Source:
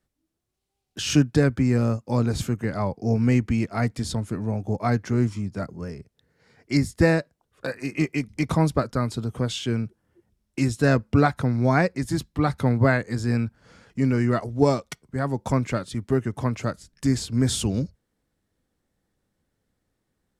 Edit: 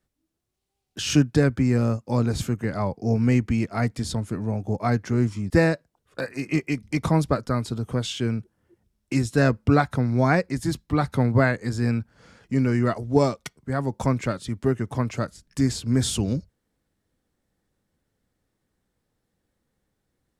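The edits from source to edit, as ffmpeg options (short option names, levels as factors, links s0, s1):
-filter_complex "[0:a]asplit=2[s0][s1];[s0]atrim=end=5.502[s2];[s1]atrim=start=6.958[s3];[s2][s3]acrossfade=d=0.004:c1=hsin:c2=hsin"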